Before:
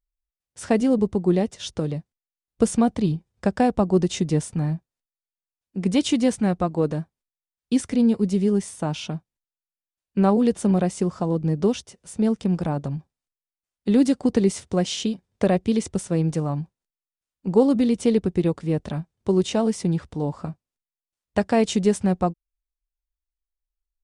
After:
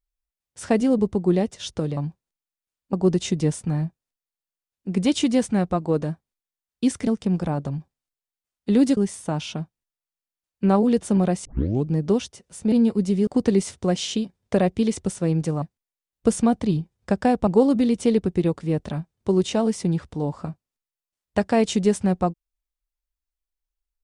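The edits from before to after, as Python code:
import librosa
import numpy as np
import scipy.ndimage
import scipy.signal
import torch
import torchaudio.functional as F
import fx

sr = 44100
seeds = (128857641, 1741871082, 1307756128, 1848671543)

y = fx.edit(x, sr, fx.swap(start_s=1.97, length_s=1.85, other_s=16.51, other_length_s=0.96),
    fx.swap(start_s=7.96, length_s=0.55, other_s=12.26, other_length_s=1.9),
    fx.tape_start(start_s=10.99, length_s=0.41), tone=tone)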